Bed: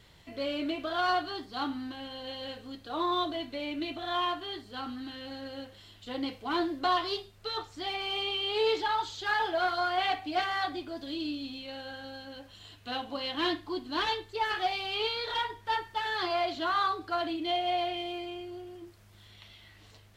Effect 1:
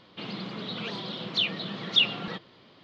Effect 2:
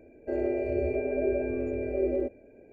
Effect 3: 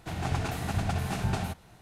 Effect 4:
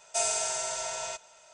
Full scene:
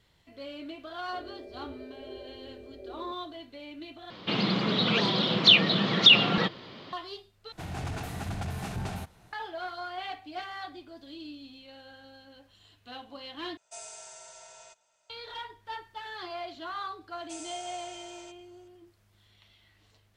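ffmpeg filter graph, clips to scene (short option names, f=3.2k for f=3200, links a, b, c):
-filter_complex "[4:a]asplit=2[a][b];[0:a]volume=-8.5dB[c];[1:a]alimiter=level_in=15dB:limit=-1dB:release=50:level=0:latency=1[d];[3:a]aeval=exprs='0.168*sin(PI/2*2*val(0)/0.168)':c=same[e];[c]asplit=4[f][g][h][i];[f]atrim=end=4.104[j];[d]atrim=end=2.83,asetpts=PTS-STARTPTS,volume=-5.5dB[k];[g]atrim=start=6.926:end=7.524[l];[e]atrim=end=1.81,asetpts=PTS-STARTPTS,volume=-13dB[m];[h]atrim=start=9.326:end=13.574[n];[a]atrim=end=1.53,asetpts=PTS-STARTPTS,volume=-16dB[o];[i]atrim=start=15.096[p];[2:a]atrim=end=2.72,asetpts=PTS-STARTPTS,volume=-16.5dB,afade=t=in:d=0.004:c=hsin,afade=t=out:st=2.716:d=0.004:c=hsin,adelay=850[q];[b]atrim=end=1.53,asetpts=PTS-STARTPTS,volume=-16dB,afade=t=in:d=0.004:c=hsin,afade=t=out:st=1.526:d=0.004:c=hsin,adelay=17150[r];[j][k]acrossfade=d=0.004:c1=hsin:c2=hsin[s];[s][l]acrossfade=d=0.004:c1=hsin:c2=hsin[t];[t][m]acrossfade=d=0.004:c1=hsin:c2=hsin[u];[u][n]acrossfade=d=0.004:c1=hsin:c2=hsin[v];[v][o]acrossfade=d=0.004:c1=hsin:c2=hsin[w];[w][p]acrossfade=d=0.004:c1=hsin:c2=hsin[x];[x][q][r]amix=inputs=3:normalize=0"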